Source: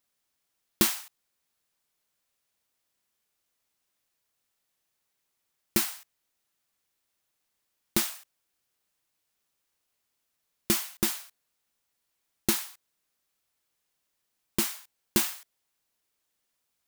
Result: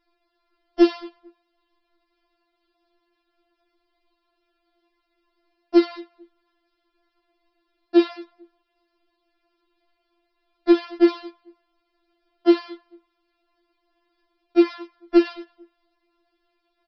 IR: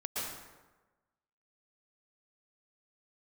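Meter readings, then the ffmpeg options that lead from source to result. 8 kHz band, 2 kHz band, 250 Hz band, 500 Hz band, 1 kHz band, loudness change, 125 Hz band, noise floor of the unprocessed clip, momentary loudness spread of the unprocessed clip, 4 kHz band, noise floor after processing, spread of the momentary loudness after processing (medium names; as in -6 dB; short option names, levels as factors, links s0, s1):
under -30 dB, +1.5 dB, +16.0 dB, +18.5 dB, +7.5 dB, +8.0 dB, under -20 dB, -80 dBFS, 18 LU, -2.0 dB, -75 dBFS, 11 LU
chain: -filter_complex "[0:a]tiltshelf=f=1100:g=9,acompressor=threshold=0.0355:ratio=2,aresample=11025,aeval=exprs='0.266*sin(PI/2*2.24*val(0)/0.266)':c=same,aresample=44100,asplit=2[s0][s1];[s1]adelay=222,lowpass=f=1400:p=1,volume=0.0708,asplit=2[s2][s3];[s3]adelay=222,lowpass=f=1400:p=1,volume=0.29[s4];[s0][s2][s4]amix=inputs=3:normalize=0,afftfilt=real='re*4*eq(mod(b,16),0)':imag='im*4*eq(mod(b,16),0)':win_size=2048:overlap=0.75,volume=1.88"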